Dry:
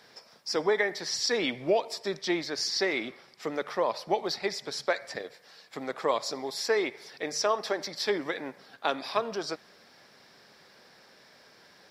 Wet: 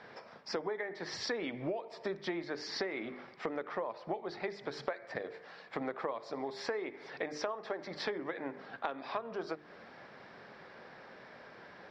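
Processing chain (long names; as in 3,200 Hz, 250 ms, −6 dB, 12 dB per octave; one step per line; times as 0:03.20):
low-pass filter 2,000 Hz 12 dB per octave
mains-hum notches 50/100/150/200/250/300/350/400/450 Hz
downward compressor 16 to 1, threshold −40 dBFS, peak gain reduction 20.5 dB
level +6.5 dB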